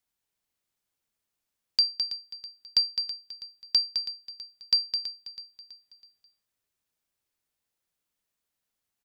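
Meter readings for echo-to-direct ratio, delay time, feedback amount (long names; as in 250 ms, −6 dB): −12.0 dB, 326 ms, 45%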